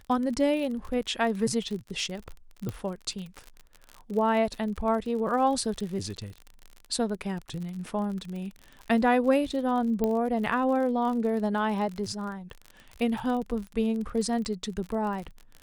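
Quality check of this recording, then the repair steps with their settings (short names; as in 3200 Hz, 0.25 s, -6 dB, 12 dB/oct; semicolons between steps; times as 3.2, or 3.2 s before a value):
crackle 45/s -34 dBFS
2.69 pop -20 dBFS
10.04 pop -15 dBFS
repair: de-click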